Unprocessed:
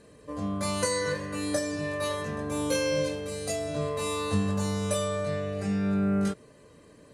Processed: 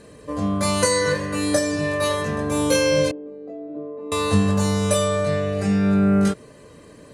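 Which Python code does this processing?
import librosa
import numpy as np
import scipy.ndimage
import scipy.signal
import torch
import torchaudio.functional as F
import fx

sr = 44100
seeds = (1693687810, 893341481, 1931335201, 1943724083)

y = fx.ladder_bandpass(x, sr, hz=350.0, resonance_pct=60, at=(3.11, 4.12))
y = y * librosa.db_to_amplitude(8.5)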